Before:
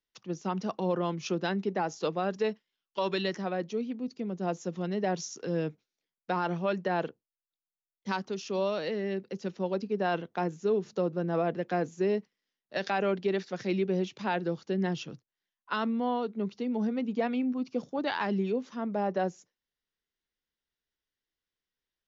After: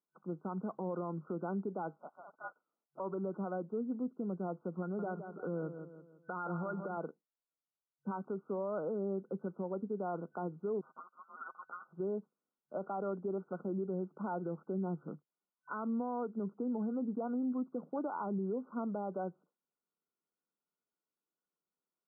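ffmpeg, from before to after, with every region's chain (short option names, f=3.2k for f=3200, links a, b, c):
-filter_complex "[0:a]asettb=1/sr,asplit=3[a][b][c];[a]atrim=end=1.994[d];[b]atrim=start=1.99:end=3,asetpts=PTS-STARTPTS,afade=t=in:d=0.004:c=qsin,afade=t=out:st=1.006:d=0.004:c=qsin,bandreject=f=60:t=h:w=6,bandreject=f=120:t=h:w=6,bandreject=f=180:t=h:w=6,bandreject=f=240:t=h:w=6,bandreject=f=300:t=h:w=6,bandreject=f=360:t=h:w=6,bandreject=f=420:t=h:w=6,bandreject=f=480:t=h:w=6,asoftclip=type=hard:threshold=-21.5dB,lowpass=f=2.9k:t=q:w=0.5098,lowpass=f=2.9k:t=q:w=0.6013,lowpass=f=2.9k:t=q:w=0.9,lowpass=f=2.9k:t=q:w=2.563,afreqshift=-3400[e];[c]atrim=start=2.996[f];[d][e]acrossfade=d=0.004:c1=hsin:c2=qsin[g];[g][f]acrossfade=d=0.004:c1=qsin:c2=hsin,asettb=1/sr,asplit=3[h][i][j];[h]atrim=end=4.824[k];[i]atrim=start=4.82:end=6.98,asetpts=PTS-STARTPTS,afade=t=in:d=0.004:c=qsin,afade=t=out:st=2.156:d=0.004:c=qsin,equalizer=f=1.4k:t=o:w=0.45:g=9.5,acompressor=threshold=-32dB:ratio=6:attack=3.2:release=140:knee=1:detection=peak,aecho=1:1:167|334|501|668:0.316|0.13|0.0532|0.0218,atrim=end_sample=95256[l];[j]atrim=start=6.976[m];[k][l]acrossfade=d=0.004:c1=hsin:c2=qsin[n];[n][m]acrossfade=d=0.004:c1=qsin:c2=hsin,asettb=1/sr,asplit=3[o][p][q];[o]atrim=end=10.814[r];[p]atrim=start=10.81:end=11.93,asetpts=PTS-STARTPTS,afade=t=in:d=0.004:c=qsin,afade=t=out:st=1.116:d=0.004:c=qsin,equalizer=f=2.1k:w=1.4:g=10,aecho=1:1:7.1:0.66,atrim=end_sample=49392,lowpass=f=3.3k:t=q:w=0.5098,lowpass=f=3.3k:t=q:w=0.6013,lowpass=f=3.3k:t=q:w=0.9,lowpass=f=3.3k:t=q:w=2.563,afreqshift=-3900[s];[q]atrim=start=11.926[t];[r][s]acrossfade=d=0.004:c1=hsin:c2=qsin[u];[u][t]acrossfade=d=0.004:c1=qsin:c2=hsin,afftfilt=real='re*between(b*sr/4096,150,1500)':imag='im*between(b*sr/4096,150,1500)':win_size=4096:overlap=0.75,alimiter=level_in=5.5dB:limit=-24dB:level=0:latency=1:release=166,volume=-5.5dB"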